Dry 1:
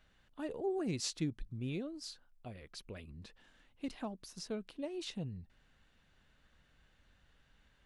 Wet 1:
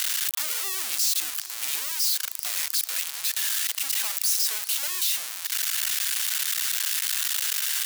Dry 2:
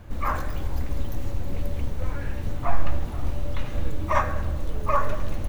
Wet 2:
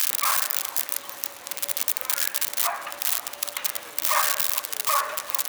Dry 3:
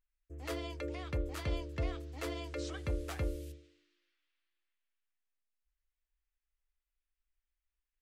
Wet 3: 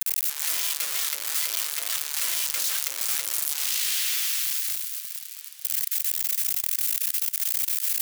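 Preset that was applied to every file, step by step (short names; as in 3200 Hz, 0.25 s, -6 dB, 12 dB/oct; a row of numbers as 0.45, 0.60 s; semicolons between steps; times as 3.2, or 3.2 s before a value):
switching spikes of -12.5 dBFS; HPF 990 Hz 12 dB/oct; in parallel at -2 dB: negative-ratio compressor -28 dBFS; on the sum: warbling echo 0.403 s, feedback 71%, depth 77 cents, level -18 dB; match loudness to -24 LUFS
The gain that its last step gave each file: -5.5, -0.5, -4.5 dB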